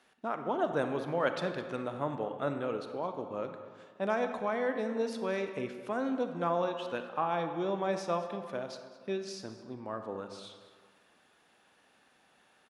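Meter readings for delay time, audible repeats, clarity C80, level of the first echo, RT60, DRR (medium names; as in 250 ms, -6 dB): 213 ms, 1, 8.5 dB, -17.0 dB, 1.8 s, 6.5 dB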